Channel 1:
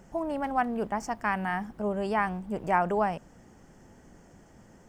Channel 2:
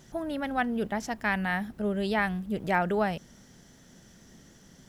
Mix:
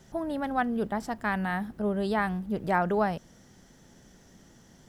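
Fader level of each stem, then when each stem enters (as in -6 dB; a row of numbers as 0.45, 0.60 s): -6.0, -3.0 dB; 0.00, 0.00 s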